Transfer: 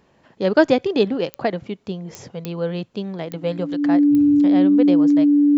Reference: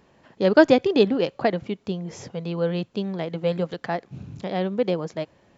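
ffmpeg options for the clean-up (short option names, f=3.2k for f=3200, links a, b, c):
-af "adeclick=t=4,bandreject=f=290:w=30"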